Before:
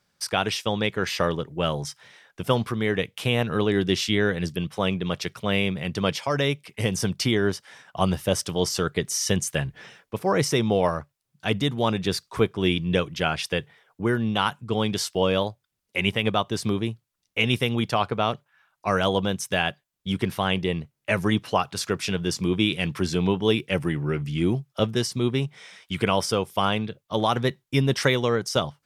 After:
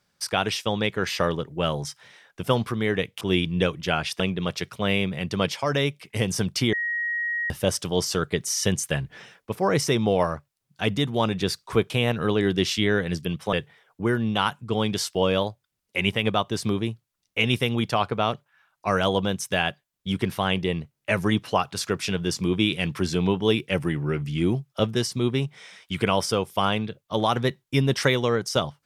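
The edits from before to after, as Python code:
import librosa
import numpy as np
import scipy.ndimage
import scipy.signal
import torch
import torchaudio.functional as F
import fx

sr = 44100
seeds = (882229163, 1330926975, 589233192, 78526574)

y = fx.edit(x, sr, fx.swap(start_s=3.21, length_s=1.63, other_s=12.54, other_length_s=0.99),
    fx.bleep(start_s=7.37, length_s=0.77, hz=1890.0, db=-24.0), tone=tone)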